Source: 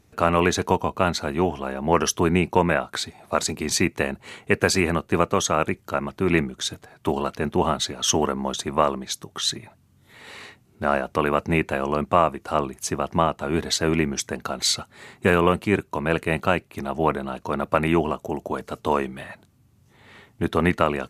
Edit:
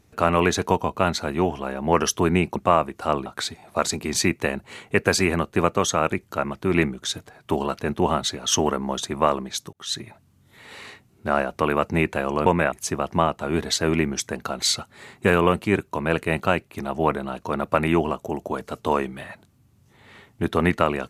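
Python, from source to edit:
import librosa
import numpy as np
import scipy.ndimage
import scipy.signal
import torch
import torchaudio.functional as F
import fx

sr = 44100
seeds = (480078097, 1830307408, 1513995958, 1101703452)

y = fx.edit(x, sr, fx.swap(start_s=2.56, length_s=0.26, other_s=12.02, other_length_s=0.7),
    fx.fade_in_span(start_s=9.29, length_s=0.29), tone=tone)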